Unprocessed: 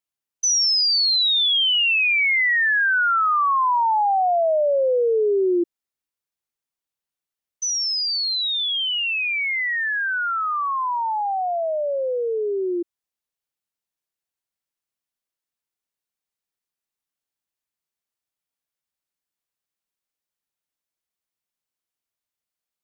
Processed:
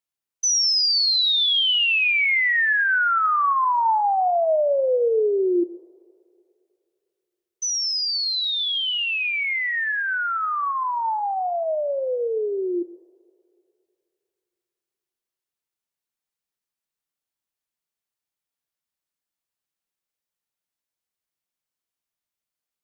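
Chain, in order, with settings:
coupled-rooms reverb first 0.89 s, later 2.8 s, from −18 dB, DRR 14.5 dB
level −1 dB

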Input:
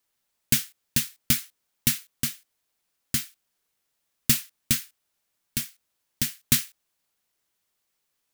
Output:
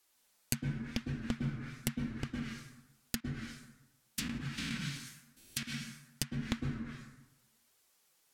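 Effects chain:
0:03.20–0:05.63: spectrum averaged block by block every 200 ms
dense smooth reverb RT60 0.98 s, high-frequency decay 0.55×, pre-delay 95 ms, DRR 1.5 dB
treble cut that deepens with the level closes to 950 Hz, closed at −25 dBFS
bass and treble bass −4 dB, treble +3 dB
downward compressor 2.5 to 1, threshold −37 dBFS, peak gain reduction 10.5 dB
flanger 0.9 Hz, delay 2.3 ms, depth 5.2 ms, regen −33%
level +7 dB

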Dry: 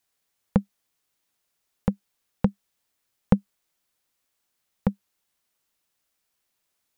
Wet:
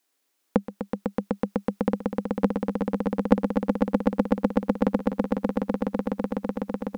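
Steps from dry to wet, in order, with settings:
low shelf with overshoot 200 Hz −12 dB, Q 3
echo that builds up and dies away 125 ms, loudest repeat 8, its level −5 dB
level +2.5 dB

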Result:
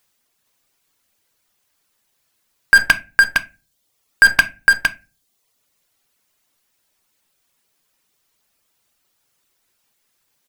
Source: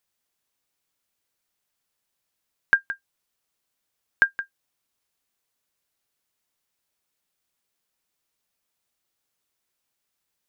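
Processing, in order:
loose part that buzzes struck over −45 dBFS, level −20 dBFS
reverb reduction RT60 1.1 s
hum removal 112.9 Hz, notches 8
in parallel at −4.5 dB: fuzz pedal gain 38 dB, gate −44 dBFS
on the sum: single-tap delay 460 ms −6.5 dB
on a send at −12 dB: convolution reverb RT60 0.25 s, pre-delay 7 ms
on the sum: boost into a limiter +14 dB
level −1 dB

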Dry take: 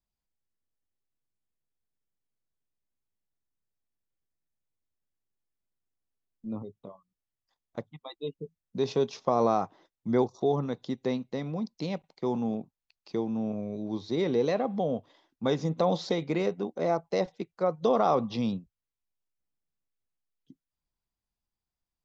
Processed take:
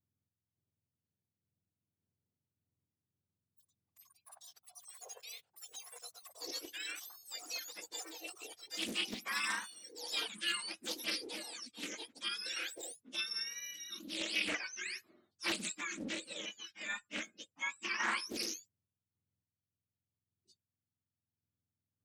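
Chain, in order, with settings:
frequency axis turned over on the octave scale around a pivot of 1,100 Hz
sample-and-hold tremolo
delay with pitch and tempo change per echo 552 ms, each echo +7 semitones, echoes 3, each echo −6 dB
highs frequency-modulated by the lows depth 0.67 ms
level −4 dB

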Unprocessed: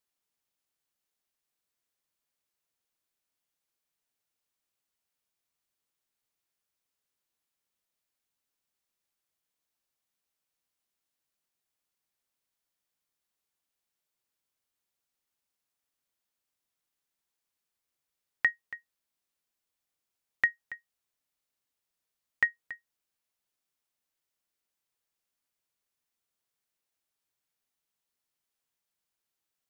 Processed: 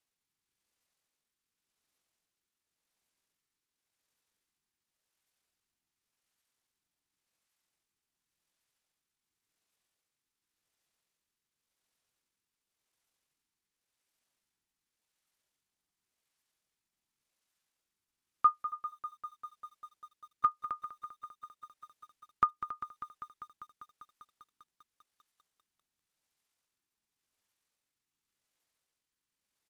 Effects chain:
rotating-speaker cabinet horn 0.9 Hz
pitch shifter −7.5 semitones
feedback echo at a low word length 198 ms, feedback 80%, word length 11 bits, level −13 dB
level +4 dB

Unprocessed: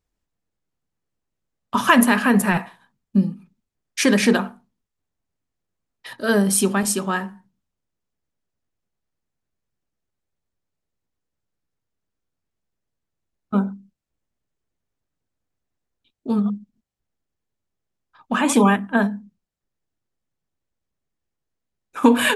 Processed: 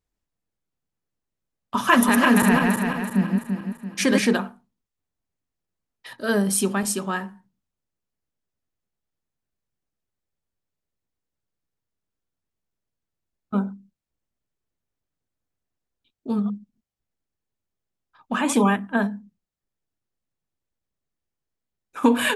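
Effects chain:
0:01.75–0:04.20: feedback delay that plays each chunk backwards 169 ms, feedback 65%, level −2 dB
level −3.5 dB

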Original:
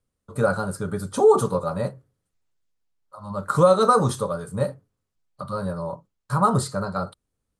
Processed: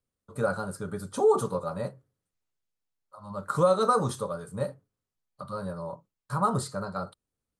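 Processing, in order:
low-shelf EQ 91 Hz −5.5 dB
level −6 dB

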